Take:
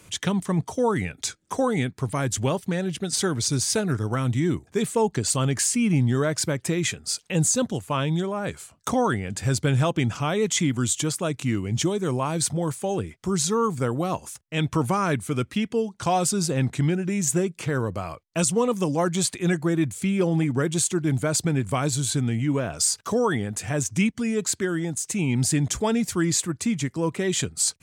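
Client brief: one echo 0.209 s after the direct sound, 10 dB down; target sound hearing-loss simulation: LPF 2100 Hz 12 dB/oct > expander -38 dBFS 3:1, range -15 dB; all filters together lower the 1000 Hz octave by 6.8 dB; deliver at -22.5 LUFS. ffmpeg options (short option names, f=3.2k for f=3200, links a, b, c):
-af "lowpass=2.1k,equalizer=f=1k:t=o:g=-9,aecho=1:1:209:0.316,agate=range=-15dB:threshold=-38dB:ratio=3,volume=4dB"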